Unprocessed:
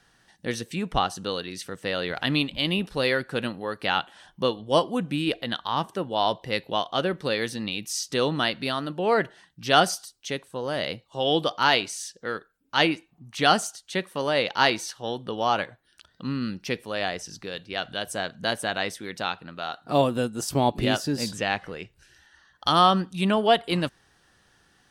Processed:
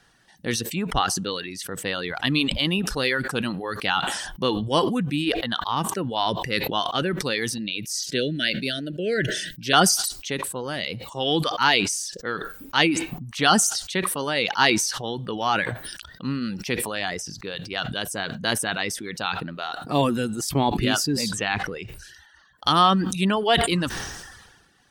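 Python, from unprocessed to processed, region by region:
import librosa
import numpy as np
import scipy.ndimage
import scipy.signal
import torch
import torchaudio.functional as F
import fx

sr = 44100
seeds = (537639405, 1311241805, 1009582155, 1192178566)

y = fx.chain(x, sr, fx.cheby1_bandstop(low_hz=630.0, high_hz=1500.0, order=4),
    fx.peak_eq(hz=68.0, db=-13.0, octaves=0.48), at=(7.58, 9.73))
y = fx.dereverb_blind(y, sr, rt60_s=0.8)
y = fx.dynamic_eq(y, sr, hz=600.0, q=2.3, threshold_db=-39.0, ratio=4.0, max_db=-7)
y = fx.sustainer(y, sr, db_per_s=43.0)
y = y * 10.0 ** (2.5 / 20.0)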